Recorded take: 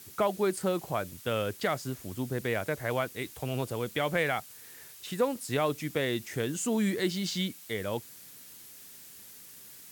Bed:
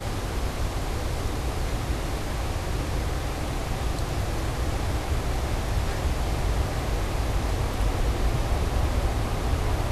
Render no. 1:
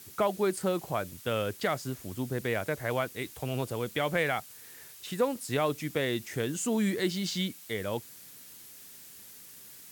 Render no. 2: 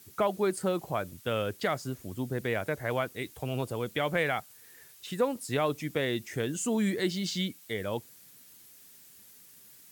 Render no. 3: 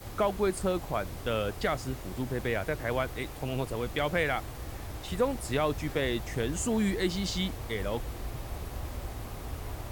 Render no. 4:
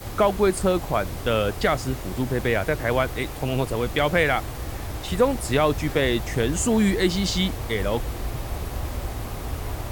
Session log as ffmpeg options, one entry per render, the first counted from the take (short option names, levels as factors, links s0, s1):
-af anull
-af "afftdn=nr=6:nf=-50"
-filter_complex "[1:a]volume=0.224[s0];[0:a][s0]amix=inputs=2:normalize=0"
-af "volume=2.51"